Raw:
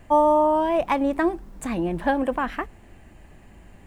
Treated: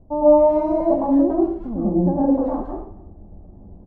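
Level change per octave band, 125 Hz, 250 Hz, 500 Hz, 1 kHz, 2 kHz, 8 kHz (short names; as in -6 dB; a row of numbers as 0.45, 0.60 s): +9.5 dB, +7.0 dB, +5.5 dB, -3.5 dB, under -20 dB, under -25 dB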